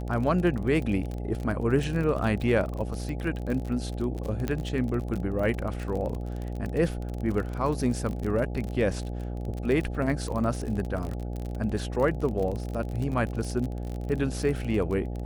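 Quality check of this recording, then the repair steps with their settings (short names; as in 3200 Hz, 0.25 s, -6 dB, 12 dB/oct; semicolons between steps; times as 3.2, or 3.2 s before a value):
buzz 60 Hz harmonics 14 -33 dBFS
crackle 38/s -31 dBFS
4.48 pop -16 dBFS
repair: de-click; de-hum 60 Hz, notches 14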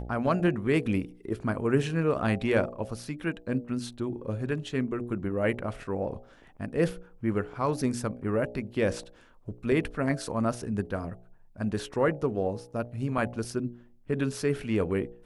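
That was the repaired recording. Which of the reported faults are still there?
none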